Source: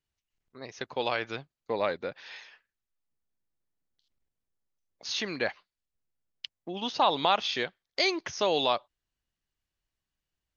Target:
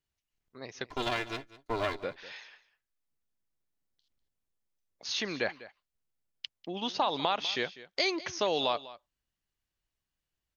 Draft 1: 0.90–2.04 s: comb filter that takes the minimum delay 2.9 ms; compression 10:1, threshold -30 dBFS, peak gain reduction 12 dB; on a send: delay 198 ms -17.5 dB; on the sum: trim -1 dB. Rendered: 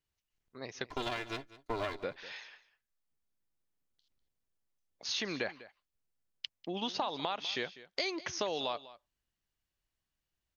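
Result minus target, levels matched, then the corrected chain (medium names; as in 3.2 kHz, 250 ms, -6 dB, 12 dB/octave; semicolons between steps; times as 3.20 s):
compression: peak gain reduction +7 dB
0.90–2.04 s: comb filter that takes the minimum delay 2.9 ms; compression 10:1, threshold -22.5 dBFS, peak gain reduction 5.5 dB; on a send: delay 198 ms -17.5 dB; on the sum: trim -1 dB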